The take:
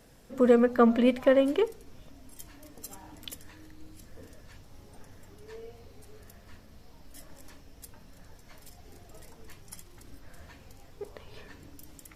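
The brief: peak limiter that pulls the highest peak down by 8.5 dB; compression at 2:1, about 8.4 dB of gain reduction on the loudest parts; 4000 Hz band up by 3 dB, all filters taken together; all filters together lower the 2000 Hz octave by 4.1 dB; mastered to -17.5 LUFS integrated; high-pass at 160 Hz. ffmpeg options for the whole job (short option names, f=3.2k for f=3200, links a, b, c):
-af "highpass=160,equalizer=f=2k:t=o:g=-7,equalizer=f=4k:t=o:g=8,acompressor=threshold=-32dB:ratio=2,volume=24.5dB,alimiter=limit=-2dB:level=0:latency=1"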